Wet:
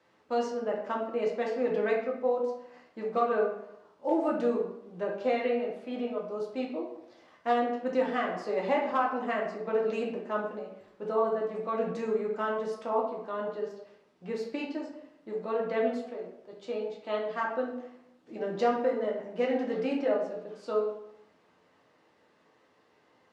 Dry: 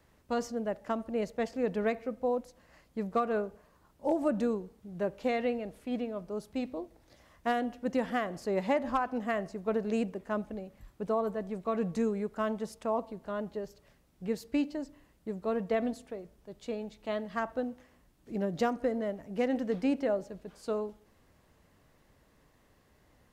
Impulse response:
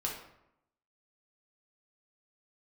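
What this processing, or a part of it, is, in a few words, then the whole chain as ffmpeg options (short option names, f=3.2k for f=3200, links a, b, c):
supermarket ceiling speaker: -filter_complex "[0:a]highpass=280,lowpass=5.1k[a];[1:a]atrim=start_sample=2205[b];[a][b]afir=irnorm=-1:irlink=0"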